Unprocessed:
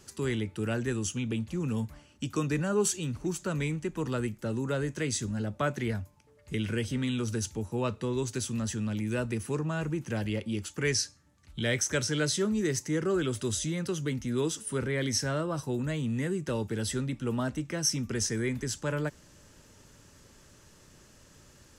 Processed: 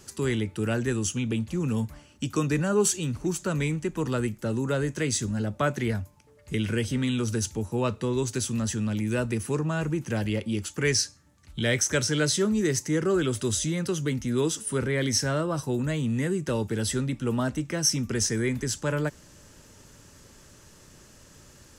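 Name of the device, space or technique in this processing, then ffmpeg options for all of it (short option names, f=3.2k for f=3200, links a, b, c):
exciter from parts: -filter_complex "[0:a]asplit=2[a][b];[b]highpass=4.4k,asoftclip=type=tanh:threshold=-34dB,volume=-12dB[c];[a][c]amix=inputs=2:normalize=0,volume=4dB"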